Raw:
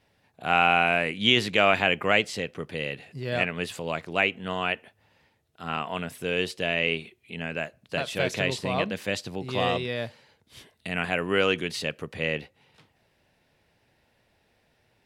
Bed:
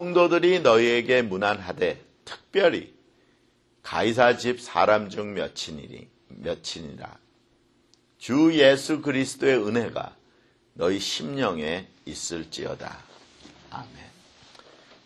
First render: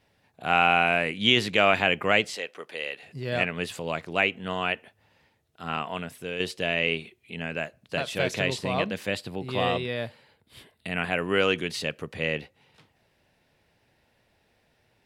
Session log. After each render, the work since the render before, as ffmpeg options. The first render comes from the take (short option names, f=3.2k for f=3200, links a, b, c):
-filter_complex "[0:a]asettb=1/sr,asplit=3[a][b][c];[a]atrim=end=2.354[d];[b]atrim=start=2.35:end=3.03,asetpts=PTS-STARTPTS,afade=t=in:d=0.004:c=qsin,afade=t=out:st=0.676:d=0.004:c=qsin,highpass=520[e];[c]atrim=start=3.026[f];[d][e]acrossfade=d=0.004:c1=hsin:c2=qsin[g];[g][f]acrossfade=d=0.004:c1=qsin:c2=hsin,asettb=1/sr,asplit=3[h][i][j];[h]atrim=end=9.084[k];[i]atrim=start=9.08:end=11.19,asetpts=PTS-STARTPTS,afade=t=in:d=0.004:c=qsin,afade=t=out:st=2.106:d=0.004:c=qsin,equalizer=f=6.1k:t=o:w=0.39:g=-11.5[l];[j]atrim=start=11.186[m];[k][l]acrossfade=d=0.004:c1=hsin:c2=qsin[n];[n][m]acrossfade=d=0.004:c1=qsin:c2=hsin,asplit=2[o][p];[o]atrim=end=6.4,asetpts=PTS-STARTPTS,afade=t=out:st=5.79:d=0.61:silence=0.446684[q];[p]atrim=start=6.4,asetpts=PTS-STARTPTS,afade=t=in:d=0.004:c=hsin:silence=0.446684[r];[q][r]concat=n=2:v=0:a=1"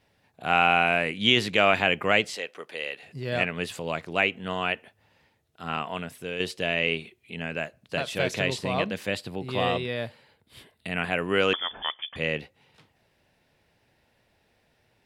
-filter_complex "[0:a]asettb=1/sr,asplit=3[a][b][c];[a]atrim=end=11.534[d];[b]atrim=start=11.53:end=12.16,asetpts=PTS-STARTPTS,afade=t=in:d=0.004:c=qsin,afade=t=out:st=0.626:d=0.004:c=qsin,lowpass=f=3.1k:t=q:w=0.5098,lowpass=f=3.1k:t=q:w=0.6013,lowpass=f=3.1k:t=q:w=0.9,lowpass=f=3.1k:t=q:w=2.563,afreqshift=-3600[e];[c]atrim=start=12.156[f];[d][e]acrossfade=d=0.004:c1=hsin:c2=qsin[g];[g][f]acrossfade=d=0.004:c1=qsin:c2=hsin"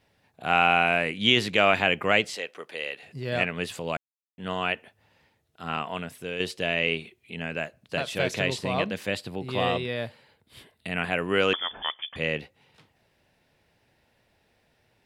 -filter_complex "[0:a]asplit=3[a][b][c];[a]atrim=end=3.97,asetpts=PTS-STARTPTS,afade=t=out:st=3.966:d=0.004:c=hsin[d];[b]atrim=start=3.97:end=4.38,asetpts=PTS-STARTPTS,volume=0[e];[c]atrim=start=4.38,asetpts=PTS-STARTPTS,afade=t=in:d=0.004:c=hsin[f];[d][e][f]concat=n=3:v=0:a=1"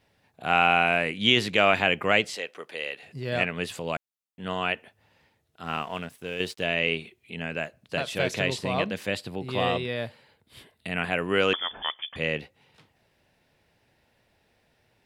-filter_complex "[0:a]asettb=1/sr,asplit=3[a][b][c];[a]atrim=end=5.644[d];[b]atrim=start=5.64:end=6.64,asetpts=PTS-STARTPTS,afade=t=in:d=0.004:c=qsin,afade=t=out:st=0.996:d=0.004:c=qsin,aeval=exprs='sgn(val(0))*max(abs(val(0))-0.00251,0)':c=same[e];[c]atrim=start=6.636[f];[d][e]acrossfade=d=0.004:c1=hsin:c2=qsin[g];[g][f]acrossfade=d=0.004:c1=qsin:c2=hsin"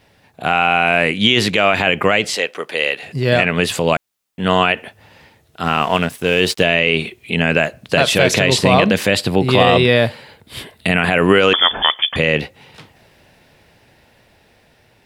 -af "dynaudnorm=f=870:g=7:m=7dB,alimiter=level_in=13dB:limit=-1dB:release=50:level=0:latency=1"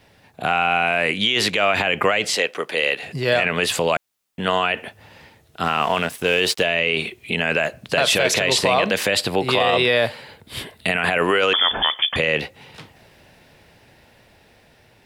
-filter_complex "[0:a]acrossover=split=410[a][b];[a]acompressor=threshold=-27dB:ratio=6[c];[c][b]amix=inputs=2:normalize=0,alimiter=limit=-7.5dB:level=0:latency=1:release=21"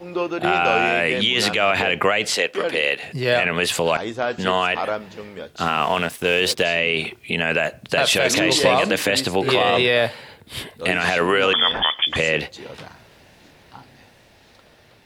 -filter_complex "[1:a]volume=-5.5dB[a];[0:a][a]amix=inputs=2:normalize=0"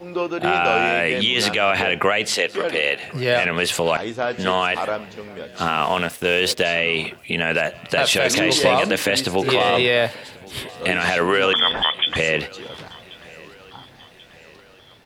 -af "aecho=1:1:1086|2172|3258|4344:0.0708|0.0375|0.0199|0.0105"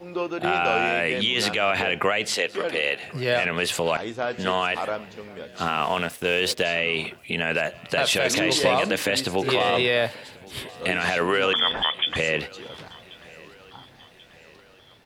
-af "volume=-4dB"